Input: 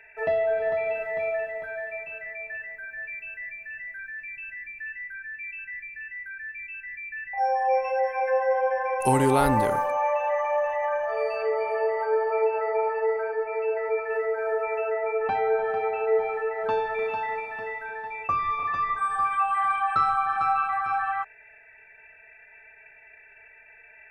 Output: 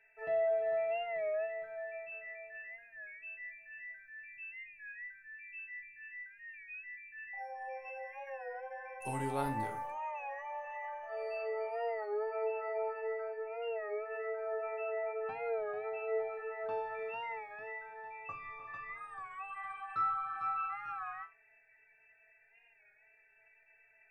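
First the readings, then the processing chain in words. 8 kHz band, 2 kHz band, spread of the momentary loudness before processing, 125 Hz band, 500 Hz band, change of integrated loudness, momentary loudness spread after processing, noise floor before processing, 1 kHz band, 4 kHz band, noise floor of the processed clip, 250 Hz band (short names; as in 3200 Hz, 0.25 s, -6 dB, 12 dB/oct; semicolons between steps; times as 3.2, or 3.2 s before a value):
-16.5 dB, -12.0 dB, 12 LU, -14.0 dB, -12.0 dB, -13.0 dB, 12 LU, -52 dBFS, -14.5 dB, n/a, -67 dBFS, -15.5 dB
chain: resonator bank A2 major, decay 0.27 s; record warp 33 1/3 rpm, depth 100 cents; gain -3 dB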